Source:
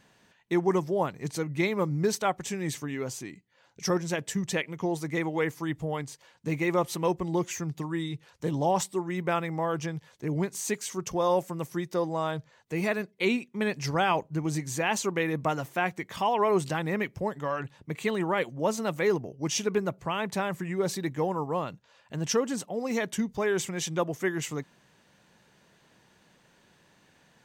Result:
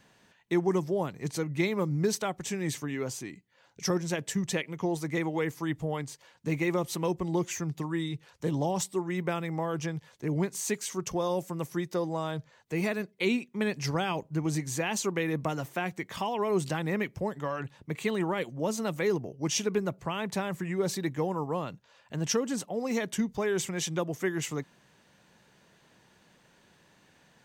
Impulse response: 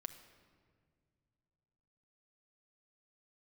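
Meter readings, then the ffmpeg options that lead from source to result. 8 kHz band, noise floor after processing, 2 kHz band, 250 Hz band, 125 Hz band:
0.0 dB, −63 dBFS, −3.0 dB, −0.5 dB, 0.0 dB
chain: -filter_complex "[0:a]acrossover=split=400|3000[link_01][link_02][link_03];[link_02]acompressor=threshold=-31dB:ratio=6[link_04];[link_01][link_04][link_03]amix=inputs=3:normalize=0"

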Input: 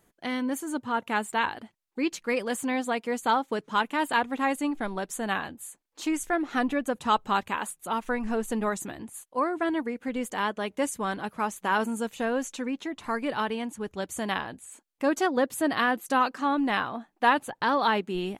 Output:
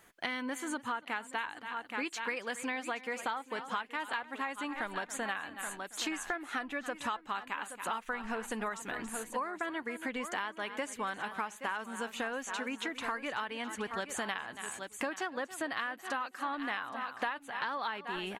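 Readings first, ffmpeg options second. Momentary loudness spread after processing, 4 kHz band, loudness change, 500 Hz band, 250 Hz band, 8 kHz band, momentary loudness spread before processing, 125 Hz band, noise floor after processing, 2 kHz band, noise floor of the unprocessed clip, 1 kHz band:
3 LU, −5.5 dB, −8.5 dB, −11.0 dB, −12.5 dB, −5.0 dB, 8 LU, −12.5 dB, −55 dBFS, −5.0 dB, −72 dBFS, −9.5 dB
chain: -filter_complex "[0:a]equalizer=frequency=1800:width=0.43:gain=13,asplit=2[link_01][link_02];[link_02]aecho=0:1:823:0.188[link_03];[link_01][link_03]amix=inputs=2:normalize=0,acrossover=split=9100[link_04][link_05];[link_05]acompressor=threshold=-49dB:ratio=4:attack=1:release=60[link_06];[link_04][link_06]amix=inputs=2:normalize=0,highshelf=frequency=5800:gain=7,asplit=2[link_07][link_08];[link_08]aecho=0:1:278:0.126[link_09];[link_07][link_09]amix=inputs=2:normalize=0,acompressor=threshold=-30dB:ratio=12,volume=-3dB"

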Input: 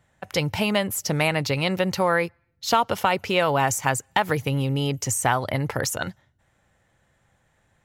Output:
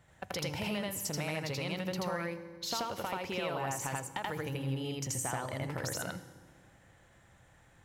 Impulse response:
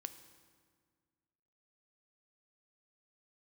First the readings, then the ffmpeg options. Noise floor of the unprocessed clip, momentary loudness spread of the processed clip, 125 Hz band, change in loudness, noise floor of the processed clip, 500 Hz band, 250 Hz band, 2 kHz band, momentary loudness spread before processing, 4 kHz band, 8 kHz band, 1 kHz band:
−67 dBFS, 4 LU, −11.5 dB, −12.5 dB, −62 dBFS, −13.0 dB, −11.5 dB, −13.5 dB, 6 LU, −11.0 dB, −10.0 dB, −14.5 dB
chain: -filter_complex "[0:a]acompressor=threshold=-39dB:ratio=4,asoftclip=type=tanh:threshold=-22dB,asplit=2[link_01][link_02];[1:a]atrim=start_sample=2205,adelay=82[link_03];[link_02][link_03]afir=irnorm=-1:irlink=0,volume=4.5dB[link_04];[link_01][link_04]amix=inputs=2:normalize=0"

